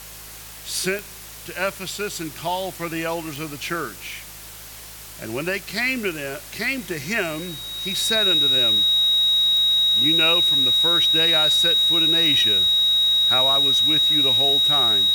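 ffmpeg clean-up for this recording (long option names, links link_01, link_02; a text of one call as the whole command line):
ffmpeg -i in.wav -af "adeclick=threshold=4,bandreject=frequency=53.3:width_type=h:width=4,bandreject=frequency=106.6:width_type=h:width=4,bandreject=frequency=159.9:width_type=h:width=4,bandreject=frequency=3800:width=30,afwtdn=0.011" out.wav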